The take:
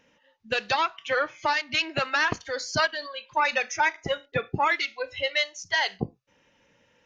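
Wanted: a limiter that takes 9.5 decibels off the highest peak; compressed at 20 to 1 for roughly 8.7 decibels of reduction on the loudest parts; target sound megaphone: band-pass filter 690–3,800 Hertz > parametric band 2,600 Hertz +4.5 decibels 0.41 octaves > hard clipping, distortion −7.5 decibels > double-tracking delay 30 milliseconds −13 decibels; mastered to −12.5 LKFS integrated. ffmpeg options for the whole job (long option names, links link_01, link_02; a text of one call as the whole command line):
ffmpeg -i in.wav -filter_complex "[0:a]acompressor=threshold=-27dB:ratio=20,alimiter=level_in=1.5dB:limit=-24dB:level=0:latency=1,volume=-1.5dB,highpass=690,lowpass=3800,equalizer=frequency=2600:width_type=o:width=0.41:gain=4.5,asoftclip=type=hard:threshold=-37.5dB,asplit=2[link_01][link_02];[link_02]adelay=30,volume=-13dB[link_03];[link_01][link_03]amix=inputs=2:normalize=0,volume=28dB" out.wav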